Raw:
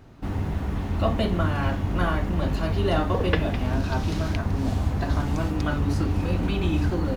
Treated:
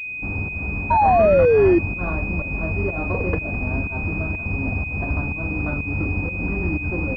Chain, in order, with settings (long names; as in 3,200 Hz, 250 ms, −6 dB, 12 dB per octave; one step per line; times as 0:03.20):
fake sidechain pumping 124 BPM, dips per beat 1, −16 dB, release 210 ms
sound drawn into the spectrogram fall, 0:00.90–0:01.79, 330–960 Hz −14 dBFS
switching amplifier with a slow clock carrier 2,500 Hz